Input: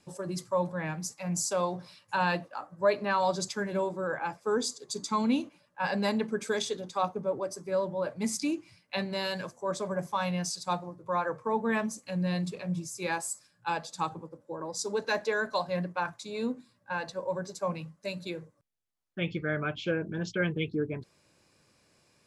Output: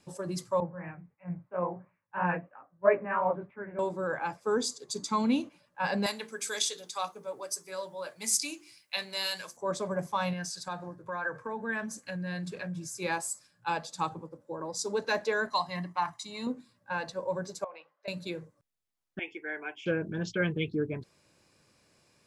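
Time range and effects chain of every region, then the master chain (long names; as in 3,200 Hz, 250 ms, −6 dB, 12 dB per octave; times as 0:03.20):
0:00.60–0:03.79: Butterworth low-pass 2,300 Hz 48 dB per octave + chorus effect 3 Hz, delay 16.5 ms, depth 7.4 ms + multiband upward and downward expander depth 100%
0:06.06–0:09.57: spectral tilt +4.5 dB per octave + mains-hum notches 50/100/150/200/250/300/350/400/450 Hz + flanger 1.8 Hz, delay 6.1 ms, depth 1.3 ms, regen −77%
0:10.33–0:12.99: downward compressor 3 to 1, threshold −35 dBFS + parametric band 1,600 Hz +14.5 dB 0.23 octaves
0:15.48–0:16.47: low-shelf EQ 380 Hz −8.5 dB + comb filter 1 ms, depth 78%
0:17.64–0:18.08: high-pass filter 520 Hz 24 dB per octave + downward compressor, threshold −37 dBFS + high-frequency loss of the air 330 metres
0:19.19–0:19.86: high-pass filter 470 Hz + phaser with its sweep stopped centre 840 Hz, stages 8
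whole clip: no processing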